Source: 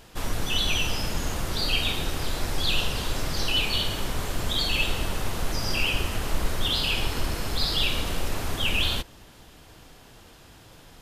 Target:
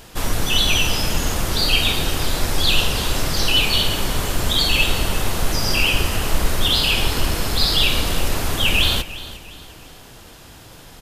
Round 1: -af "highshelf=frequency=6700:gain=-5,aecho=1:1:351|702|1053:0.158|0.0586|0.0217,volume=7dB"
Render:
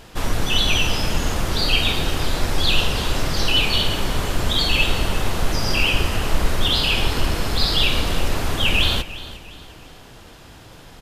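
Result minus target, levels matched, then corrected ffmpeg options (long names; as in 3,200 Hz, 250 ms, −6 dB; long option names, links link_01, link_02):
8,000 Hz band −3.5 dB
-af "highshelf=frequency=6700:gain=4.5,aecho=1:1:351|702|1053:0.158|0.0586|0.0217,volume=7dB"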